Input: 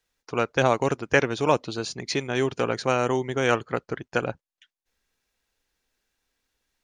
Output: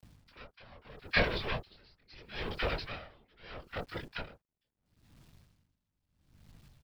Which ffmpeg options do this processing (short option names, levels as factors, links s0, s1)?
-filter_complex "[0:a]acrossover=split=350|2600[s0][s1][s2];[s0]alimiter=level_in=2.11:limit=0.0631:level=0:latency=1,volume=0.473[s3];[s3][s1][s2]amix=inputs=3:normalize=0,tiltshelf=f=1200:g=-5.5,aresample=11025,aeval=exprs='max(val(0),0)':c=same,aresample=44100,aeval=exprs='val(0)+0.000631*(sin(2*PI*50*n/s)+sin(2*PI*2*50*n/s)/2+sin(2*PI*3*50*n/s)/3+sin(2*PI*4*50*n/s)/4+sin(2*PI*5*50*n/s)/5)':c=same,flanger=delay=19.5:depth=6.6:speed=0.33,acompressor=mode=upward:threshold=0.00282:ratio=2.5,afftfilt=real='hypot(re,im)*cos(2*PI*random(0))':imag='hypot(re,im)*sin(2*PI*random(1))':win_size=512:overlap=0.75,acrossover=split=1100[s4][s5];[s4]adelay=30[s6];[s6][s5]amix=inputs=2:normalize=0,acrusher=bits=11:mix=0:aa=0.000001,aeval=exprs='val(0)*pow(10,-28*(0.5-0.5*cos(2*PI*0.76*n/s))/20)':c=same,volume=2.82"